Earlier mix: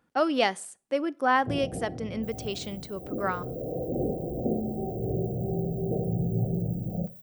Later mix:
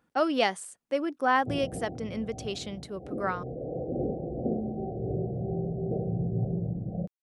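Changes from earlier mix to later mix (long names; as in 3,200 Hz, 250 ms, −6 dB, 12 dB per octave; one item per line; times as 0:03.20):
speech: send off
first sound: send −7.0 dB
second sound: muted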